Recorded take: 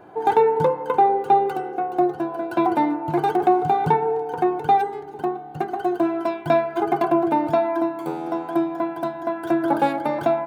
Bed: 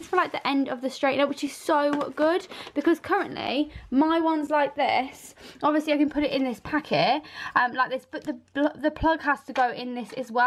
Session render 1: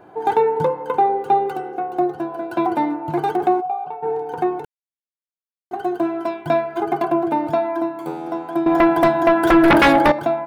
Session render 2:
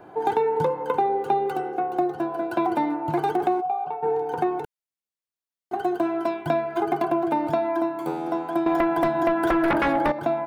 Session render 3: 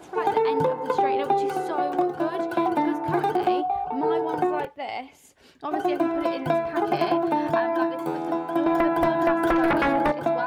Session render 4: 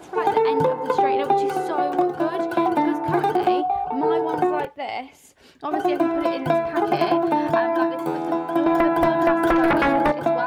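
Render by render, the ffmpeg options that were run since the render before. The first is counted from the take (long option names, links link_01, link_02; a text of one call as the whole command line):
ffmpeg -i in.wav -filter_complex "[0:a]asplit=3[link_01][link_02][link_03];[link_01]afade=type=out:start_time=3.6:duration=0.02[link_04];[link_02]asplit=3[link_05][link_06][link_07];[link_05]bandpass=frequency=730:width_type=q:width=8,volume=0dB[link_08];[link_06]bandpass=frequency=1090:width_type=q:width=8,volume=-6dB[link_09];[link_07]bandpass=frequency=2440:width_type=q:width=8,volume=-9dB[link_10];[link_08][link_09][link_10]amix=inputs=3:normalize=0,afade=type=in:start_time=3.6:duration=0.02,afade=type=out:start_time=4.02:duration=0.02[link_11];[link_03]afade=type=in:start_time=4.02:duration=0.02[link_12];[link_04][link_11][link_12]amix=inputs=3:normalize=0,asettb=1/sr,asplit=3[link_13][link_14][link_15];[link_13]atrim=end=8.664[link_16];[link_14]atrim=start=8.66:end=10.12,asetpts=PTS-STARTPTS,afade=type=in:duration=0.004:curve=qsin,afade=type=out:start_time=1.456:duration=0.004:curve=qsin,aeval=exprs='0.398*sin(PI/2*3.16*val(0)/0.398)':channel_layout=same[link_17];[link_15]atrim=start=10.116[link_18];[link_16][link_17]acrossfade=duration=0.004:curve1=hsin:curve2=qsin[link_19];[link_19][link_18]acrossfade=duration=0.004:curve1=qsin:curve2=hsin,asplit=3[link_20][link_21][link_22];[link_20]atrim=end=4.65,asetpts=PTS-STARTPTS,afade=type=out:start_time=4.646:duration=0.004:curve=hsin[link_23];[link_21]atrim=start=4.65:end=5.71,asetpts=PTS-STARTPTS,volume=0[link_24];[link_22]atrim=start=5.71,asetpts=PTS-STARTPTS,afade=type=in:duration=0.004:curve=hsin[link_25];[link_23][link_24][link_25]concat=n=3:v=0:a=1" out.wav
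ffmpeg -i in.wav -filter_complex "[0:a]acrossover=split=450|2200[link_01][link_02][link_03];[link_01]acompressor=threshold=-26dB:ratio=4[link_04];[link_02]acompressor=threshold=-23dB:ratio=4[link_05];[link_03]acompressor=threshold=-43dB:ratio=4[link_06];[link_04][link_05][link_06]amix=inputs=3:normalize=0" out.wav
ffmpeg -i in.wav -i bed.wav -filter_complex "[1:a]volume=-9dB[link_01];[0:a][link_01]amix=inputs=2:normalize=0" out.wav
ffmpeg -i in.wav -af "volume=3dB" out.wav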